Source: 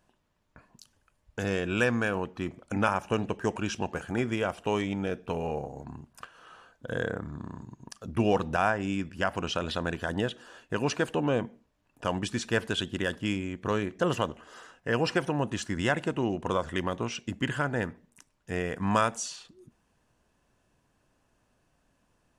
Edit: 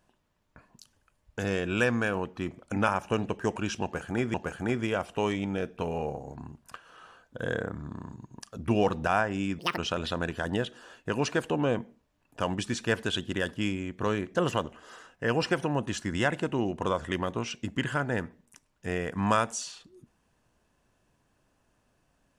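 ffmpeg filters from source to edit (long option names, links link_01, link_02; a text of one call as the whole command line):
ffmpeg -i in.wav -filter_complex "[0:a]asplit=4[link_01][link_02][link_03][link_04];[link_01]atrim=end=4.342[link_05];[link_02]atrim=start=3.828:end=9.084[link_06];[link_03]atrim=start=9.08:end=9.42,asetpts=PTS-STARTPTS,asetrate=80262,aresample=44100,atrim=end_sample=8238,asetpts=PTS-STARTPTS[link_07];[link_04]atrim=start=9.416[link_08];[link_05][link_06]acrossfade=duration=0.004:curve1=hsin:curve2=hsin[link_09];[link_09][link_07]acrossfade=duration=0.004:curve1=hsin:curve2=hsin[link_10];[link_10][link_08]acrossfade=duration=0.004:curve1=hsin:curve2=hsin" out.wav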